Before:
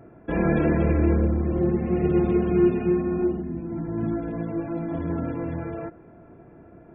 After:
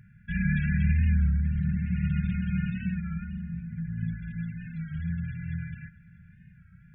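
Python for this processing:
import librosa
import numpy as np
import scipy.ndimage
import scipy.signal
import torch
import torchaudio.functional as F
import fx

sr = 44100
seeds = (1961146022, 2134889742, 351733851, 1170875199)

p1 = fx.brickwall_bandstop(x, sr, low_hz=210.0, high_hz=1400.0)
p2 = p1 + fx.echo_feedback(p1, sr, ms=649, feedback_pct=39, wet_db=-22.0, dry=0)
y = fx.record_warp(p2, sr, rpm=33.33, depth_cents=100.0)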